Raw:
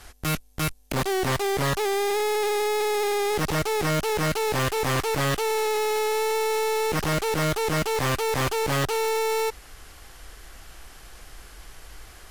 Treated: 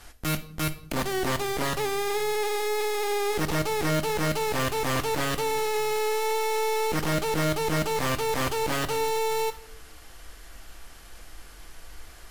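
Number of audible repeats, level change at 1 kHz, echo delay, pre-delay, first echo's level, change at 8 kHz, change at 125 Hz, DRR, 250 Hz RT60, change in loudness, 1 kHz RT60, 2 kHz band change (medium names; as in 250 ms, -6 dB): no echo, -1.5 dB, no echo, 3 ms, no echo, -2.0 dB, -3.0 dB, 9.0 dB, 1.2 s, -2.0 dB, 0.60 s, -2.0 dB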